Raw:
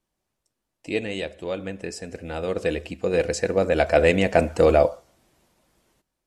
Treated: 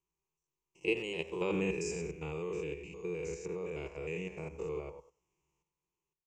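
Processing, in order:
spectrum averaged block by block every 100 ms
source passing by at 0:01.64, 15 m/s, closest 4.1 metres
output level in coarse steps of 9 dB
EQ curve with evenly spaced ripples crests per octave 0.74, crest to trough 17 dB
far-end echo of a speakerphone 90 ms, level −16 dB
level +3.5 dB

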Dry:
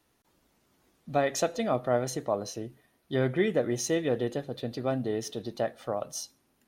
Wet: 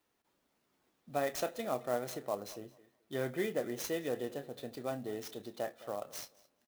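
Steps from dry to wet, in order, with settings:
low-shelf EQ 150 Hz −11.5 dB
double-tracking delay 29 ms −11.5 dB
tape delay 214 ms, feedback 23%, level −18 dB, low-pass 3,800 Hz
converter with an unsteady clock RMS 0.027 ms
level −7 dB

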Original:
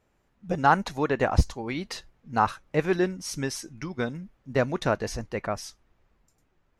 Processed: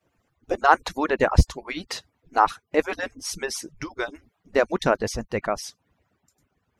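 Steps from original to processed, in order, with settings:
harmonic-percussive split with one part muted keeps percussive
level +4.5 dB

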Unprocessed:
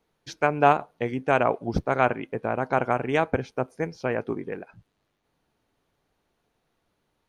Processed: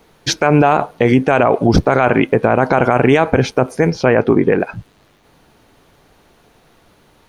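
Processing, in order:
0:03.90–0:04.60: high-shelf EQ 6,200 Hz −11 dB
boost into a limiter +23.5 dB
level −1 dB

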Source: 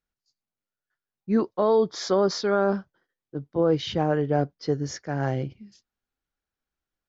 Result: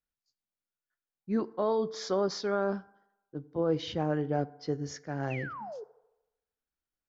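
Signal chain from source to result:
sound drawn into the spectrogram fall, 0:05.30–0:05.84, 400–2,800 Hz −34 dBFS
feedback delay network reverb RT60 0.95 s, low-frequency decay 0.75×, high-frequency decay 0.45×, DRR 17 dB
level −7 dB

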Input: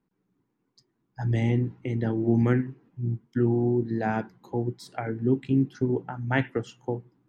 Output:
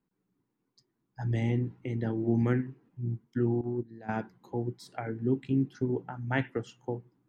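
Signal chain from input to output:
0:03.61–0:04.09: noise gate −22 dBFS, range −15 dB
level −4.5 dB

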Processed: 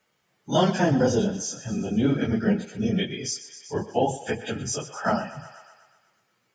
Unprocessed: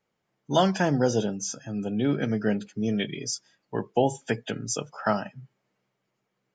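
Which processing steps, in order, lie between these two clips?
random phases in long frames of 50 ms
feedback echo with a high-pass in the loop 123 ms, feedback 60%, high-pass 360 Hz, level −16 dB
harmonic and percussive parts rebalanced percussive −4 dB
one half of a high-frequency compander encoder only
level +3.5 dB

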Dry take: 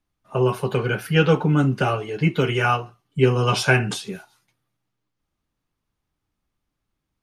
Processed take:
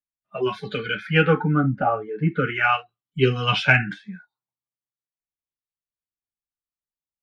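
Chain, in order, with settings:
noise reduction from a noise print of the clip's start 27 dB
auto-filter low-pass sine 0.39 Hz 940–3,800 Hz
harmonic generator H 3 −31 dB, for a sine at −0.5 dBFS
level −1 dB

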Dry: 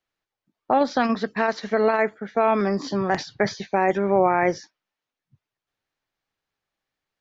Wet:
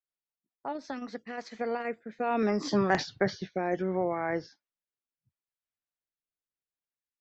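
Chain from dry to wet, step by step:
source passing by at 0:02.92, 25 m/s, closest 11 metres
rotating-speaker cabinet horn 5.5 Hz, later 0.7 Hz, at 0:00.71

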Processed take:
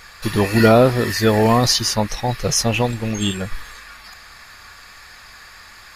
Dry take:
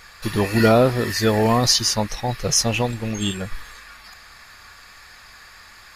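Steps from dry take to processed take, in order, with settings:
dynamic equaliser 6,300 Hz, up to −4 dB, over −29 dBFS, Q 0.86
level +3 dB

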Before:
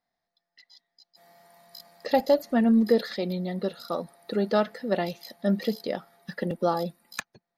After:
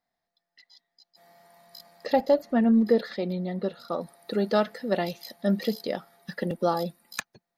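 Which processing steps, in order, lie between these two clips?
high-shelf EQ 4,200 Hz −2 dB, from 0:02.13 −10.5 dB, from 0:04.01 +3 dB

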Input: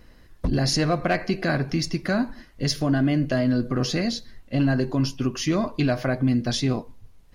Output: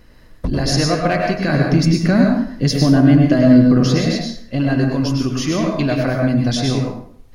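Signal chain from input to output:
0:01.52–0:03.98: parametric band 200 Hz +7 dB 2.3 octaves
dense smooth reverb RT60 0.59 s, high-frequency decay 0.75×, pre-delay 90 ms, DRR 0.5 dB
level +3 dB

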